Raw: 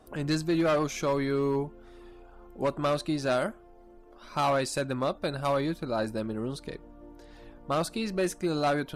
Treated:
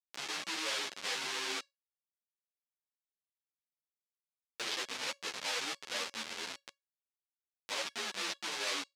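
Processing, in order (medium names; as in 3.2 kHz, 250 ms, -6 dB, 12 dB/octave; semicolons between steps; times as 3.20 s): frequency axis rescaled in octaves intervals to 85%; 1.59–4.60 s: compression, threshold -43 dBFS, peak gain reduction 18.5 dB; Schmitt trigger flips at -31 dBFS; low-pass 5.1 kHz 12 dB/octave; tilt shelf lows -7.5 dB, about 1.2 kHz; feedback comb 560 Hz, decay 0.19 s, harmonics all, mix 40%; upward compressor, threshold -45 dBFS; high-pass 360 Hz 12 dB/octave; treble shelf 2.4 kHz +10 dB; three-phase chorus; trim +3 dB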